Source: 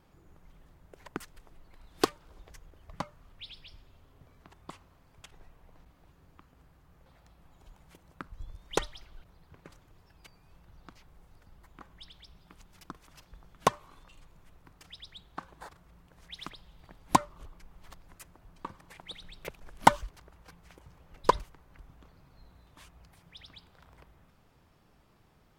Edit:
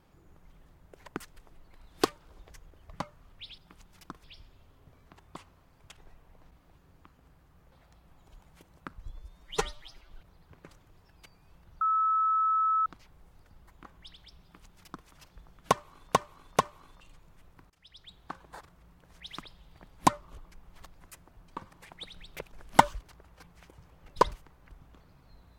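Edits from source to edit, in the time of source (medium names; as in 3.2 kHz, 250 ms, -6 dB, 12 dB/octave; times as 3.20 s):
8.46–9.12 s: stretch 1.5×
10.82 s: add tone 1.3 kHz -23 dBFS 1.05 s
12.38–13.04 s: copy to 3.58 s
13.65–14.09 s: loop, 3 plays
14.78–15.27 s: fade in, from -21.5 dB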